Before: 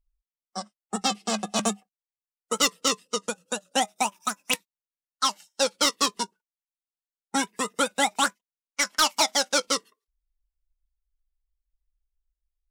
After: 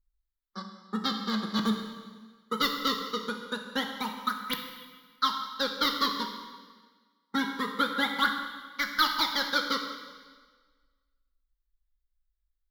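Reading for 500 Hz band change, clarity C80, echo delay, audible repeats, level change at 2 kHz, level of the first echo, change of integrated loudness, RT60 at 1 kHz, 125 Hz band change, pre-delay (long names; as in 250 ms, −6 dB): −7.5 dB, 7.0 dB, no echo audible, no echo audible, −1.0 dB, no echo audible, −4.0 dB, 1.4 s, can't be measured, 7 ms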